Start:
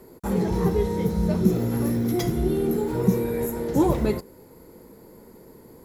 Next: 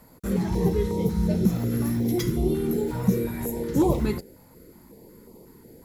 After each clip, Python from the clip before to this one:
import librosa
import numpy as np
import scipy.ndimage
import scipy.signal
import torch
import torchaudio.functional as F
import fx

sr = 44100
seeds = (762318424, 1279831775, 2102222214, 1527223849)

y = fx.filter_held_notch(x, sr, hz=5.5, low_hz=390.0, high_hz=1600.0)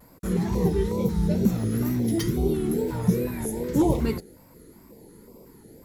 y = fx.wow_flutter(x, sr, seeds[0], rate_hz=2.1, depth_cents=110.0)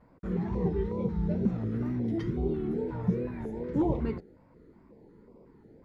y = scipy.signal.sosfilt(scipy.signal.butter(2, 2000.0, 'lowpass', fs=sr, output='sos'), x)
y = F.gain(torch.from_numpy(y), -6.0).numpy()